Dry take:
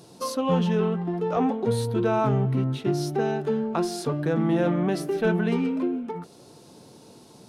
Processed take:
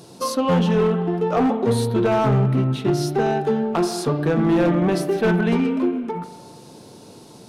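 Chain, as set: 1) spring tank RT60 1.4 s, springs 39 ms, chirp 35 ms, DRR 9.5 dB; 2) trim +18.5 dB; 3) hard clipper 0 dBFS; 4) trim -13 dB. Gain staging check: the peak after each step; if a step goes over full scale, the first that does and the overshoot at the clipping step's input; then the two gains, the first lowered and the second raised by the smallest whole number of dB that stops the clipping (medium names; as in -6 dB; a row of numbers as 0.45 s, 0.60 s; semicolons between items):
-12.0 dBFS, +6.5 dBFS, 0.0 dBFS, -13.0 dBFS; step 2, 6.5 dB; step 2 +11.5 dB, step 4 -6 dB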